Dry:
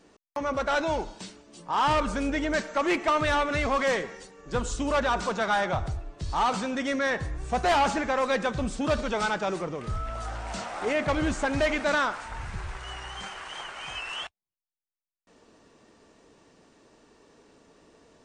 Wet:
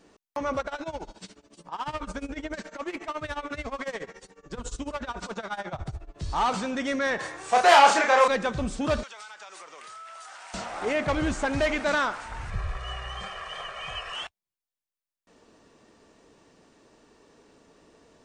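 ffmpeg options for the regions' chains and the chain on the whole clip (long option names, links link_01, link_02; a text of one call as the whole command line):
ffmpeg -i in.wav -filter_complex "[0:a]asettb=1/sr,asplit=3[link_01][link_02][link_03];[link_01]atrim=end=0.604[link_04];[link_02]atrim=start=0.6:end=6.16,asetpts=PTS-STARTPTS,afade=type=in:duration=0.004:curve=qsin,afade=type=out:start_time=5.556:duration=0.004:curve=qsin,acompressor=threshold=-27dB:ratio=6:attack=3.2:release=140:knee=1:detection=peak,tremolo=f=14:d=0.89[link_05];[link_03]atrim=start=6.156[link_06];[link_04][link_05]acrossfade=duration=0.004:curve1=hsin:curve2=qsin[link_07];[link_07][link_06]acrossfade=duration=0.004:curve1=qsin:curve2=hsin,asettb=1/sr,asplit=3[link_08][link_09][link_10];[link_08]atrim=end=7.194[link_11];[link_09]atrim=start=7.19:end=8.28,asetpts=PTS-STARTPTS,afade=type=in:duration=0.004:curve=qsin,afade=type=out:start_time=1.086:duration=0.004:curve=qsin,highpass=550,acontrast=78,asplit=2[link_12][link_13];[link_13]adelay=32,volume=-3dB[link_14];[link_12][link_14]amix=inputs=2:normalize=0,atrim=end_sample=48069[link_15];[link_10]atrim=start=8.276[link_16];[link_11][link_15]acrossfade=duration=0.004:curve1=hsin:curve2=qsin[link_17];[link_17][link_16]acrossfade=duration=0.004:curve1=qsin:curve2=hsin,asettb=1/sr,asplit=3[link_18][link_19][link_20];[link_18]atrim=end=9.034[link_21];[link_19]atrim=start=9.03:end=10.54,asetpts=PTS-STARTPTS,afade=type=in:duration=0.004:curve=qsin,afade=type=out:start_time=1.506:duration=0.004:curve=qsin,highpass=1100,highshelf=frequency=6500:gain=7.5,acompressor=threshold=-40dB:ratio=10:attack=3.2:release=140:knee=1:detection=peak[link_22];[link_20]atrim=start=10.536[link_23];[link_21][link_22]acrossfade=duration=0.004:curve1=hsin:curve2=qsin[link_24];[link_24][link_23]acrossfade=duration=0.004:curve1=qsin:curve2=hsin,asettb=1/sr,asplit=3[link_25][link_26][link_27];[link_25]atrim=end=12.504[link_28];[link_26]atrim=start=12.5:end=14.15,asetpts=PTS-STARTPTS,afade=type=in:duration=0.004:curve=qsin,afade=type=out:start_time=1.646:duration=0.004:curve=qsin,highshelf=frequency=4900:gain=-11,aecho=1:1:1.7:0.96,atrim=end_sample=72765[link_29];[link_27]atrim=start=14.146[link_30];[link_28][link_29]acrossfade=duration=0.004:curve1=hsin:curve2=qsin[link_31];[link_31][link_30]acrossfade=duration=0.004:curve1=qsin:curve2=hsin" out.wav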